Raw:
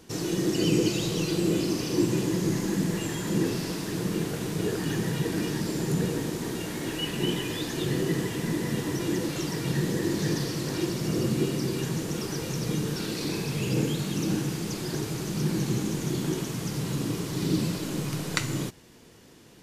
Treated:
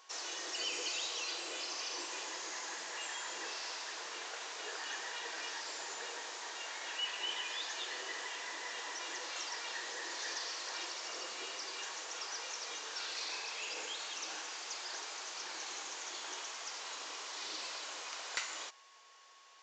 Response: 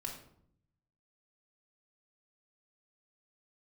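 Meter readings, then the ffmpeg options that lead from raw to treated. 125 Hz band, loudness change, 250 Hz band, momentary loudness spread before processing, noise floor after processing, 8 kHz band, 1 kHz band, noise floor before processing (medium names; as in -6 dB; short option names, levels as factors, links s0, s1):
under -40 dB, -11.5 dB, -33.0 dB, 5 LU, -60 dBFS, -5.0 dB, -4.0 dB, -51 dBFS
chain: -af "highpass=f=710:w=0.5412,highpass=f=710:w=1.3066,aeval=exprs='val(0)+0.001*sin(2*PI*1100*n/s)':c=same,aresample=16000,asoftclip=type=tanh:threshold=0.0596,aresample=44100,volume=0.708"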